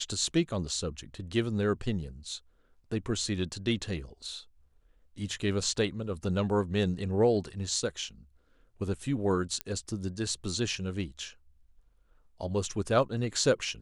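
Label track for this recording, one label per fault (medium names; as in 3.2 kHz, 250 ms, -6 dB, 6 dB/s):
9.610000	9.610000	pop -16 dBFS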